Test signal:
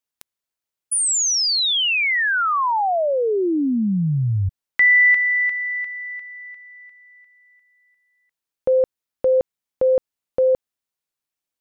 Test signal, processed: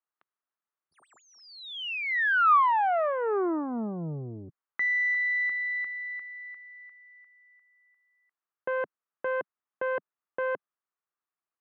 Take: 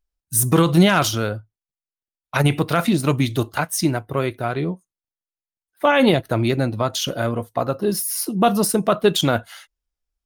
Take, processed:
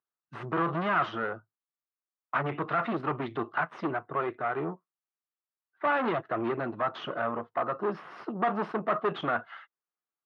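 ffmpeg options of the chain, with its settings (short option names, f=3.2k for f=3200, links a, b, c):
-af "aeval=exprs='(tanh(12.6*val(0)+0.5)-tanh(0.5))/12.6':c=same,highpass=f=180:w=0.5412,highpass=f=180:w=1.3066,equalizer=f=190:t=q:w=4:g=-8,equalizer=f=270:t=q:w=4:g=-8,equalizer=f=520:t=q:w=4:g=-6,equalizer=f=1.2k:t=q:w=4:g=7,equalizer=f=2.3k:t=q:w=4:g=-5,lowpass=f=2.3k:w=0.5412,lowpass=f=2.3k:w=1.3066"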